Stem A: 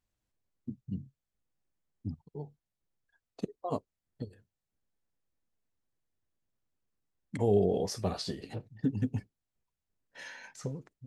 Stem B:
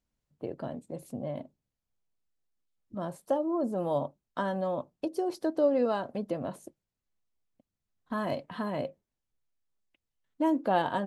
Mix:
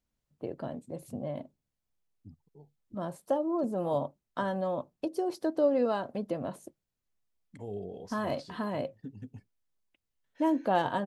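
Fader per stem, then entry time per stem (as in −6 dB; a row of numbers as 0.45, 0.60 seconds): −13.5, −0.5 decibels; 0.20, 0.00 seconds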